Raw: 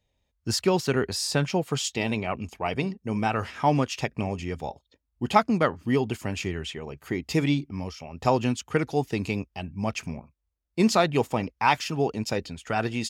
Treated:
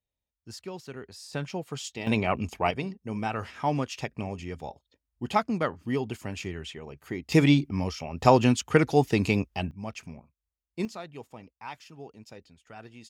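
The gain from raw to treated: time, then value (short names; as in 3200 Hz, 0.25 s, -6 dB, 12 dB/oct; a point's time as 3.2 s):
-16.5 dB
from 1.33 s -8.5 dB
from 2.07 s +3 dB
from 2.71 s -5 dB
from 7.32 s +4 dB
from 9.71 s -8.5 dB
from 10.85 s -19 dB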